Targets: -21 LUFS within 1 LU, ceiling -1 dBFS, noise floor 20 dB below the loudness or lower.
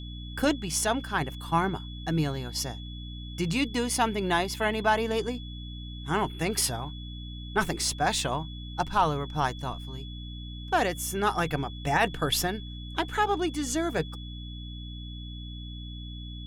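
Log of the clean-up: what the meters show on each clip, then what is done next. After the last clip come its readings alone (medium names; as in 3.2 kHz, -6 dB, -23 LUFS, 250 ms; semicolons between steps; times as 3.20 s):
hum 60 Hz; highest harmonic 300 Hz; hum level -37 dBFS; steady tone 3.4 kHz; tone level -45 dBFS; loudness -28.5 LUFS; peak level -11.5 dBFS; loudness target -21.0 LUFS
-> hum notches 60/120/180/240/300 Hz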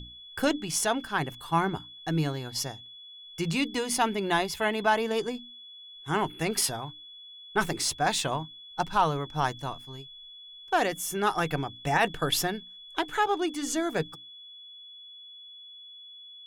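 hum not found; steady tone 3.4 kHz; tone level -45 dBFS
-> band-stop 3.4 kHz, Q 30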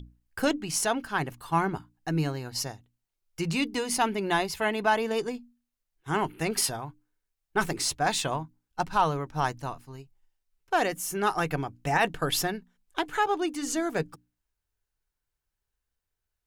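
steady tone not found; loudness -29.0 LUFS; peak level -12.0 dBFS; loudness target -21.0 LUFS
-> trim +8 dB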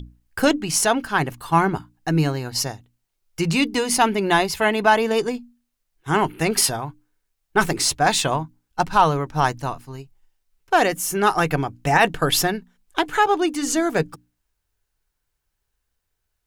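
loudness -21.0 LUFS; peak level -4.0 dBFS; noise floor -77 dBFS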